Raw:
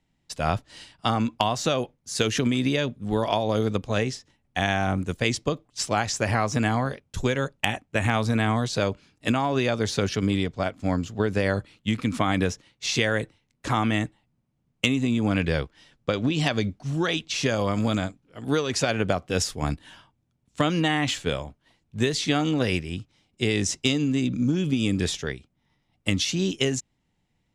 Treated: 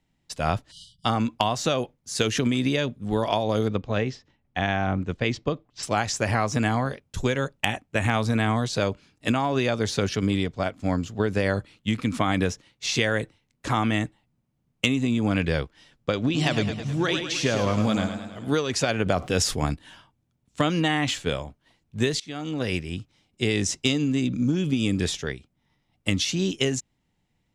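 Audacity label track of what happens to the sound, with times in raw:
0.710000	1.050000	spectral delete 210–2900 Hz
3.680000	5.830000	air absorption 160 m
16.230000	18.550000	warbling echo 0.106 s, feedback 57%, depth 80 cents, level -8 dB
19.060000	19.660000	fast leveller amount 50%
22.200000	22.870000	fade in, from -23.5 dB

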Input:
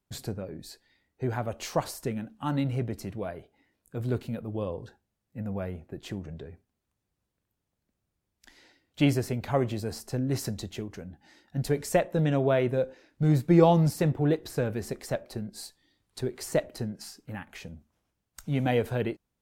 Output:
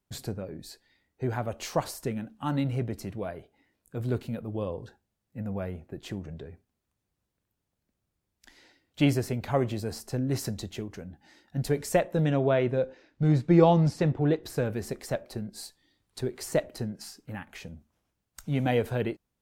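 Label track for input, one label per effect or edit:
12.310000	14.440000	LPF 5700 Hz

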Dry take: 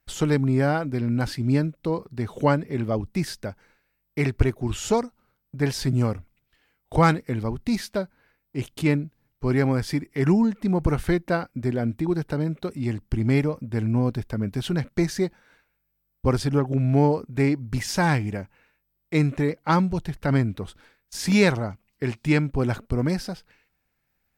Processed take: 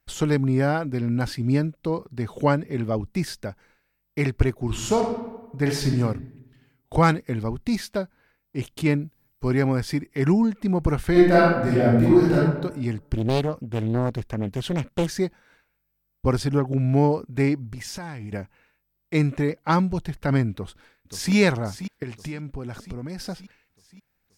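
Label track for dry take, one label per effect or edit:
4.660000	5.940000	reverb throw, RT60 1.1 s, DRR 2.5 dB
9.000000	9.470000	high shelf 10000 Hz -> 5700 Hz +11 dB
11.110000	12.370000	reverb throw, RT60 0.98 s, DRR -8.5 dB
13.140000	15.090000	Doppler distortion depth 0.93 ms
17.640000	18.320000	compressor 10:1, threshold -31 dBFS
20.520000	21.340000	echo throw 0.53 s, feedback 60%, level -10.5 dB
22.030000	23.200000	compressor 8:1, threshold -29 dBFS

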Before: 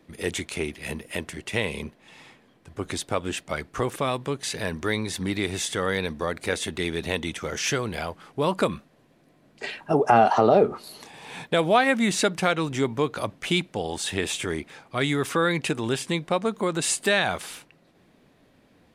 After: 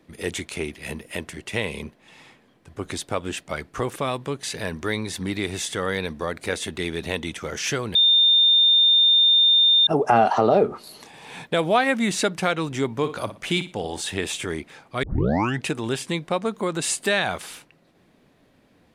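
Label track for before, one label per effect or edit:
7.950000	9.870000	bleep 3620 Hz -13 dBFS
12.920000	14.010000	flutter echo walls apart 10 m, dies away in 0.29 s
15.030000	15.030000	tape start 0.63 s

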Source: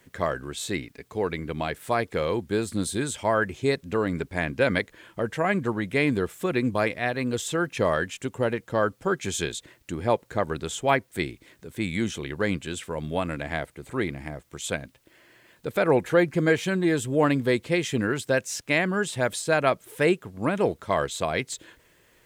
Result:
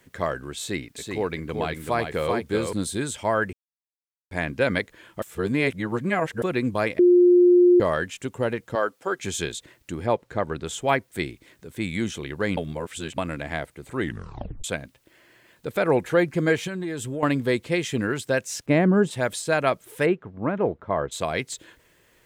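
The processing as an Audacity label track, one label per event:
0.580000	2.730000	echo 0.382 s -4.5 dB
3.530000	4.310000	mute
5.220000	6.420000	reverse
6.990000	7.800000	bleep 355 Hz -11.5 dBFS
8.750000	9.190000	HPF 360 Hz
10.060000	10.670000	LPF 3900 Hz 6 dB/oct
12.570000	13.180000	reverse
13.990000	13.990000	tape stop 0.65 s
16.670000	17.230000	compressor 5:1, threshold -27 dBFS
18.660000	19.110000	tilt shelf lows +10 dB, about 1100 Hz
20.050000	21.110000	LPF 2000 Hz -> 1200 Hz

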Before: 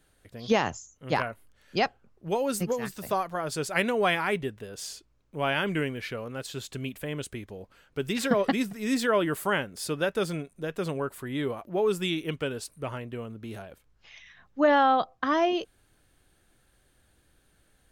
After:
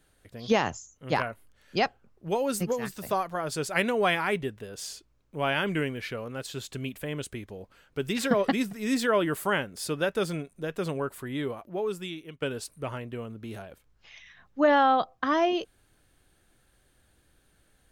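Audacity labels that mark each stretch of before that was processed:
11.190000	12.420000	fade out, to -15.5 dB

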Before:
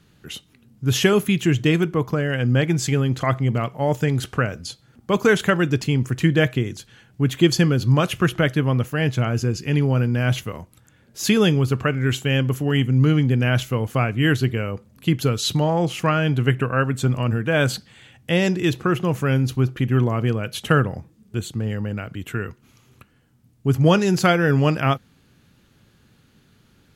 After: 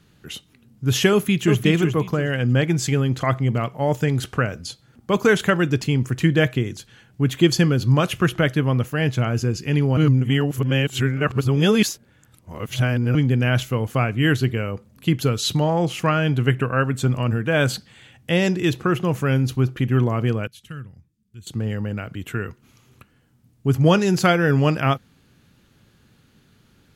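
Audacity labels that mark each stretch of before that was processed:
1.110000	1.640000	echo throw 0.36 s, feedback 25%, level -5.5 dB
9.970000	13.150000	reverse
20.470000	21.470000	passive tone stack bass-middle-treble 6-0-2

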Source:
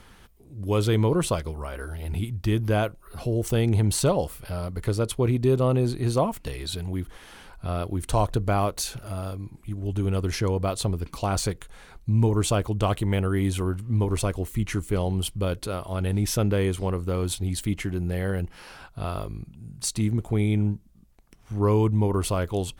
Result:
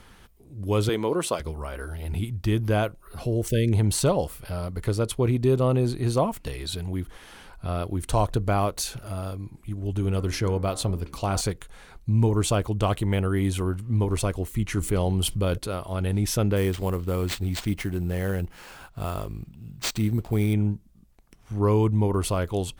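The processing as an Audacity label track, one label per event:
0.890000	1.400000	HPF 270 Hz
3.490000	3.720000	spectral delete 640–1500 Hz
9.990000	11.410000	de-hum 70.25 Hz, notches 32
14.770000	15.580000	fast leveller amount 50%
16.560000	20.540000	sample-rate reducer 12000 Hz

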